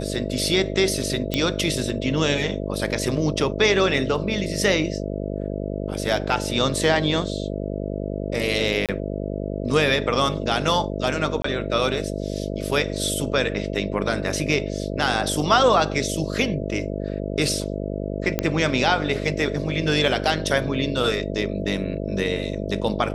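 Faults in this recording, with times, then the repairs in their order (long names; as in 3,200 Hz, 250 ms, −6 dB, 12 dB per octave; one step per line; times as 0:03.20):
mains buzz 50 Hz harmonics 13 −28 dBFS
0:01.34: click −8 dBFS
0:08.86–0:08.89: drop-out 27 ms
0:11.42–0:11.44: drop-out 24 ms
0:18.39: click −6 dBFS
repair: click removal
hum removal 50 Hz, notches 13
repair the gap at 0:08.86, 27 ms
repair the gap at 0:11.42, 24 ms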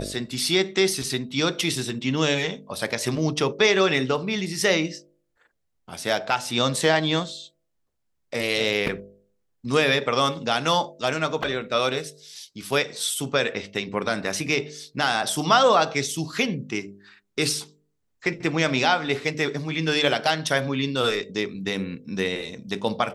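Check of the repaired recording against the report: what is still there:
none of them is left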